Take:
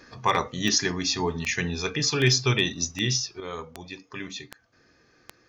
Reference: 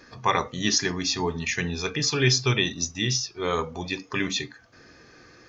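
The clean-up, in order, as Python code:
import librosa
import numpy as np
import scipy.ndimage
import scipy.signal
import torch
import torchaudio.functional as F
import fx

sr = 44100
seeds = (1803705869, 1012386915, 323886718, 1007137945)

y = fx.fix_declip(x, sr, threshold_db=-10.5)
y = fx.fix_declick_ar(y, sr, threshold=10.0)
y = fx.fix_level(y, sr, at_s=3.4, step_db=9.5)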